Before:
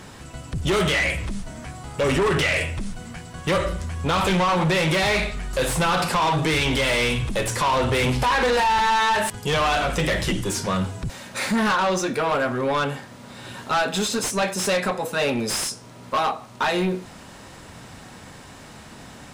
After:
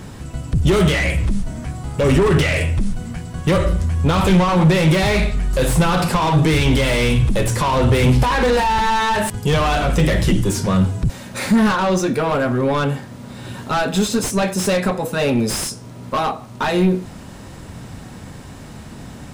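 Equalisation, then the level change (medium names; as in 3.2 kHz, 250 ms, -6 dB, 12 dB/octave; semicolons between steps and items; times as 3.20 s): bass shelf 380 Hz +11.5 dB; treble shelf 11 kHz +6.5 dB; 0.0 dB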